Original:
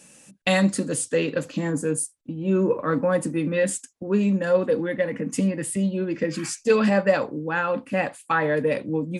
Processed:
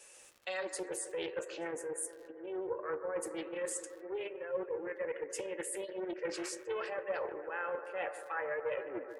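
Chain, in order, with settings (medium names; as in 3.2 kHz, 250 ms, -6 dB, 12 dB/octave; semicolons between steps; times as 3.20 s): tape stop on the ending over 0.32 s; Chebyshev high-pass 350 Hz, order 6; reverse; compression 6:1, threshold -31 dBFS, peak gain reduction 15.5 dB; reverse; crackle 220 per s -45 dBFS; spectral gate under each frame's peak -25 dB strong; flange 0.45 Hz, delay 6.7 ms, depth 9.3 ms, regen +75%; bucket-brigade echo 146 ms, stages 2048, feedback 79%, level -12 dB; loudspeaker Doppler distortion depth 0.21 ms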